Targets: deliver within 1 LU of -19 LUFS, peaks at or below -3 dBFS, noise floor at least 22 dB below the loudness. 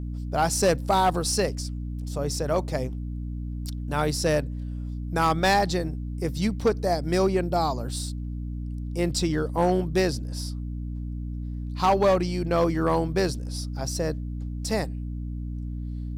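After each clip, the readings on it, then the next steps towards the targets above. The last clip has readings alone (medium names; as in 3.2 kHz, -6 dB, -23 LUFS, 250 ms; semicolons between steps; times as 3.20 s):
clipped samples 0.5%; clipping level -14.5 dBFS; hum 60 Hz; highest harmonic 300 Hz; hum level -29 dBFS; loudness -26.5 LUFS; peak level -14.5 dBFS; loudness target -19.0 LUFS
-> clip repair -14.5 dBFS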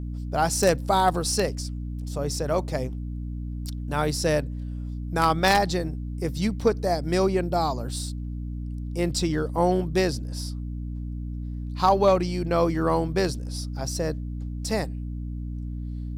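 clipped samples 0.0%; hum 60 Hz; highest harmonic 300 Hz; hum level -29 dBFS
-> de-hum 60 Hz, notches 5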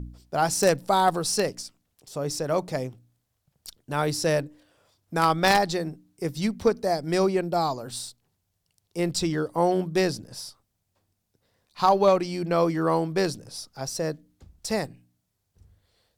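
hum not found; loudness -25.5 LUFS; peak level -5.0 dBFS; loudness target -19.0 LUFS
-> trim +6.5 dB; peak limiter -3 dBFS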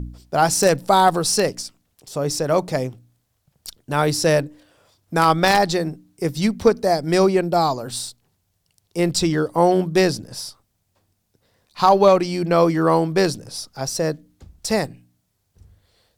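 loudness -19.5 LUFS; peak level -3.0 dBFS; noise floor -71 dBFS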